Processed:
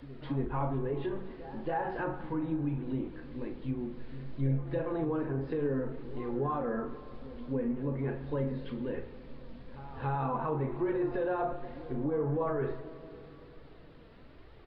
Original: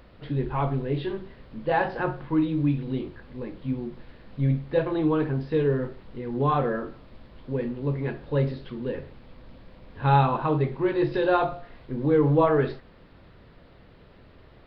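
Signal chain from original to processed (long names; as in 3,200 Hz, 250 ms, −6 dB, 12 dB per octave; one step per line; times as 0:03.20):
flanger 1.1 Hz, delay 2.1 ms, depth 2.5 ms, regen +44%
brickwall limiter −24.5 dBFS, peak gain reduction 11.5 dB
treble cut that deepens with the level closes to 1,700 Hz, closed at −29.5 dBFS
double-tracking delay 37 ms −11 dB
echo ahead of the sound 279 ms −15.5 dB
on a send at −13 dB: convolution reverb RT60 3.5 s, pre-delay 3 ms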